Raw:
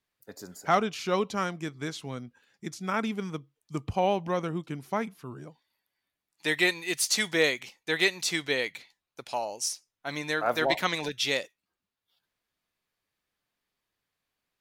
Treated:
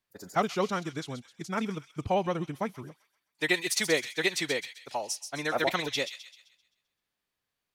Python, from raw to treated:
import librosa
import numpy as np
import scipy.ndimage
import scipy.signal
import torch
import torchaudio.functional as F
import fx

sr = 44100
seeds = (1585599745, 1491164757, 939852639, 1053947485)

p1 = fx.stretch_vocoder(x, sr, factor=0.53)
y = p1 + fx.echo_wet_highpass(p1, sr, ms=130, feedback_pct=42, hz=2700.0, wet_db=-7.5, dry=0)